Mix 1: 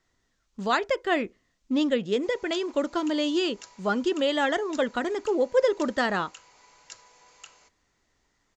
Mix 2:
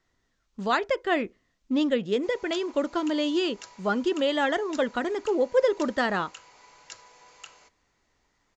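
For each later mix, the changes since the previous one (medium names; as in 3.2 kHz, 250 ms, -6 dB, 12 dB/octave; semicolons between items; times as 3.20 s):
background +3.5 dB; master: add treble shelf 8 kHz -9 dB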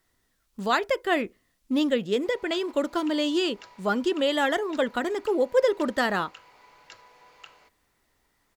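speech: remove distance through air 210 m; master: add peaking EQ 6.9 kHz -13.5 dB 0.85 oct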